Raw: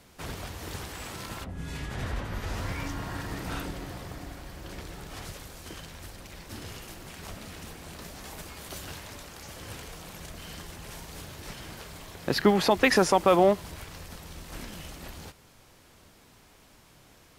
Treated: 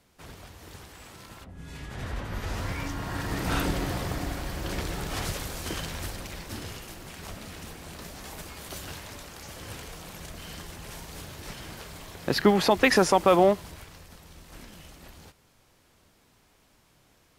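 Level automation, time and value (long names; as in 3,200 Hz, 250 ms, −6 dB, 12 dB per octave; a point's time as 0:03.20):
0:01.40 −8 dB
0:02.39 +1 dB
0:02.98 +1 dB
0:03.71 +9 dB
0:06.02 +9 dB
0:06.82 +1 dB
0:13.43 +1 dB
0:14.05 −6 dB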